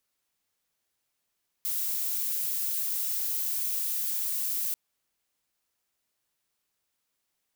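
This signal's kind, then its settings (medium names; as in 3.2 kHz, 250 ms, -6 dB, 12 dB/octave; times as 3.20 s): noise violet, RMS -30 dBFS 3.09 s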